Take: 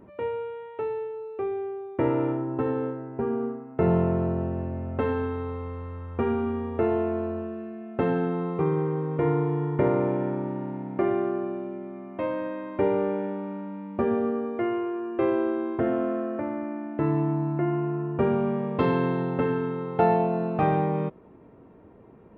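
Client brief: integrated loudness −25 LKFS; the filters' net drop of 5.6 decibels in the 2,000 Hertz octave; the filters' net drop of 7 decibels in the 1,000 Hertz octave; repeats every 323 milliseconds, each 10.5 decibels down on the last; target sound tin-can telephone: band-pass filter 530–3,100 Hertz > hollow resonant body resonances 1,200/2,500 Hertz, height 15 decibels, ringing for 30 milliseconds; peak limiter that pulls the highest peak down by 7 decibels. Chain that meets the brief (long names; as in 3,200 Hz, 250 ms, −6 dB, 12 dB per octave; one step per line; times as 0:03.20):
parametric band 1,000 Hz −8 dB
parametric band 2,000 Hz −3.5 dB
brickwall limiter −19 dBFS
band-pass filter 530–3,100 Hz
repeating echo 323 ms, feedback 30%, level −10.5 dB
hollow resonant body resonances 1,200/2,500 Hz, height 15 dB, ringing for 30 ms
level +11 dB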